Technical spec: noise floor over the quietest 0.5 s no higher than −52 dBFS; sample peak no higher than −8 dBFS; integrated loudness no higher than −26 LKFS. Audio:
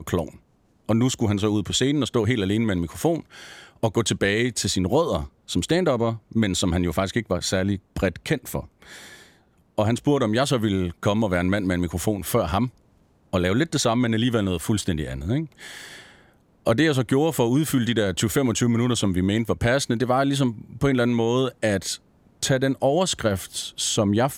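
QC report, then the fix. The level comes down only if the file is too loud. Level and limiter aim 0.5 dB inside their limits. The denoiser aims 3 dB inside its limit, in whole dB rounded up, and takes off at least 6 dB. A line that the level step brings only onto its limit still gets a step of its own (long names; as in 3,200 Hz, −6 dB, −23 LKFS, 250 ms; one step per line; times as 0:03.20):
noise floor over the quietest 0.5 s −61 dBFS: in spec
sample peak −8.5 dBFS: in spec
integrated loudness −23.0 LKFS: out of spec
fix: level −3.5 dB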